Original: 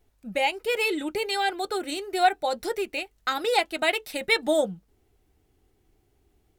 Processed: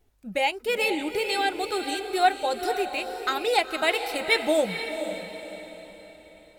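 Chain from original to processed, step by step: diffused feedback echo 0.488 s, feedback 43%, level -8 dB

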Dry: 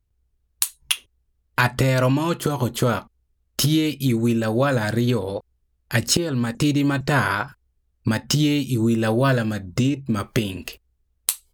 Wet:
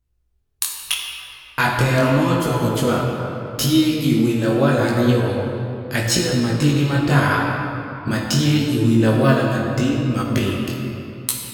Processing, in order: reverb RT60 3.2 s, pre-delay 4 ms, DRR -1 dB; chorus 0.79 Hz, delay 16 ms, depth 7.8 ms; gain +2.5 dB

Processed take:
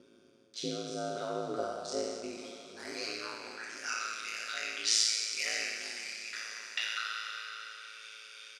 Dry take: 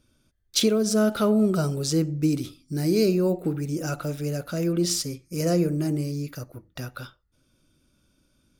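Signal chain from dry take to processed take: spectral trails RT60 1.62 s; comb 6.1 ms, depth 90%; upward compressor, threshold -23 dBFS; band-pass sweep 280 Hz -> 2200 Hz, 0.82–4.14; whine 490 Hz -59 dBFS; ring modulator 55 Hz; weighting filter ITU-R 468; diffused feedback echo 0.489 s, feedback 56%, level -15 dB

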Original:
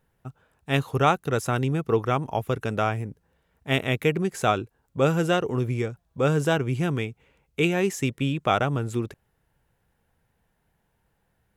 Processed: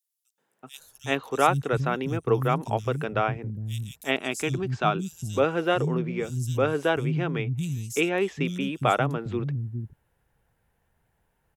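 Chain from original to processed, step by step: 3.78–4.56 thirty-one-band EQ 500 Hz -12 dB, 2000 Hz -6 dB, 5000 Hz +4 dB, 8000 Hz +4 dB; three bands offset in time highs, mids, lows 0.38/0.79 s, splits 210/4400 Hz

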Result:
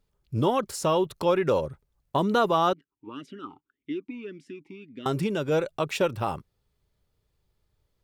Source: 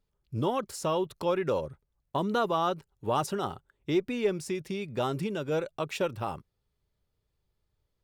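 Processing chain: 2.73–5.06 vowel sweep i-u 1.8 Hz; gain +5 dB

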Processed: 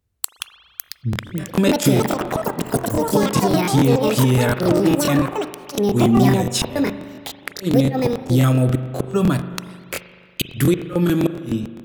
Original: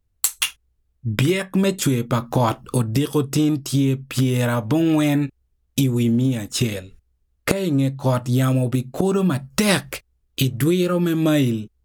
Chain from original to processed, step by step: HPF 69 Hz 12 dB/oct; flipped gate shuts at -9 dBFS, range -33 dB; echoes that change speed 0.636 s, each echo +7 st, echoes 3; spring tank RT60 1.9 s, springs 39 ms, chirp 75 ms, DRR 10.5 dB; crackling interface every 0.14 s, samples 1024, repeat, from 0.83; gain +2.5 dB

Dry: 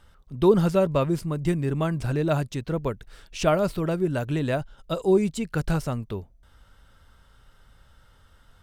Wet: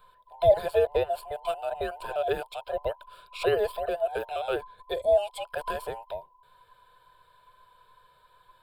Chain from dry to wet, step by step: band inversion scrambler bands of 1000 Hz; fixed phaser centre 1300 Hz, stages 8

